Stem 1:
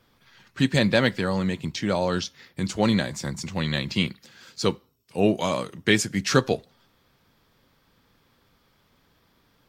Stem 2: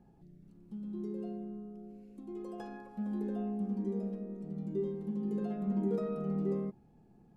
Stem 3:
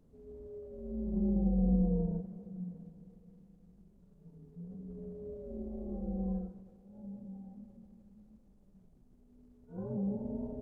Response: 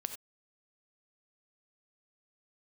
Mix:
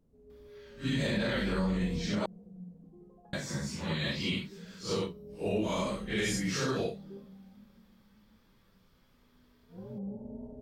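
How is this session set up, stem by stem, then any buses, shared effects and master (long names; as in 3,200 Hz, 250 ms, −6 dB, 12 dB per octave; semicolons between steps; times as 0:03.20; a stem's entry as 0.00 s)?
−5.5 dB, 0.30 s, muted 0:02.26–0:03.33, no send, random phases in long frames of 200 ms; notch filter 740 Hz, Q 12
−11.5 dB, 0.65 s, no send, Chebyshev band-pass filter 140–890 Hz, order 2; reverb reduction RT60 1.6 s
−5.0 dB, 0.00 s, no send, no processing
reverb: not used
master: brickwall limiter −22 dBFS, peak gain reduction 9.5 dB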